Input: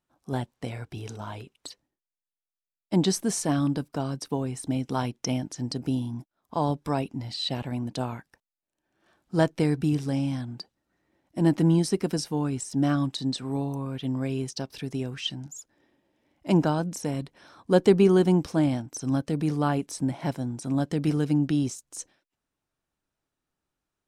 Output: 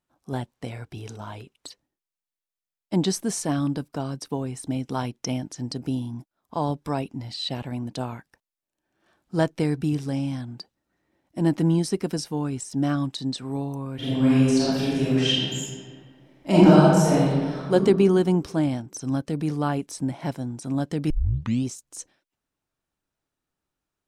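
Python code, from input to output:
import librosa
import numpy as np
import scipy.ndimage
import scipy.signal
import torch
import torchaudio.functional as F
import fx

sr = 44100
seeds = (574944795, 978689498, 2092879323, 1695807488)

y = fx.reverb_throw(x, sr, start_s=13.95, length_s=3.77, rt60_s=1.7, drr_db=-10.0)
y = fx.edit(y, sr, fx.tape_start(start_s=21.1, length_s=0.55), tone=tone)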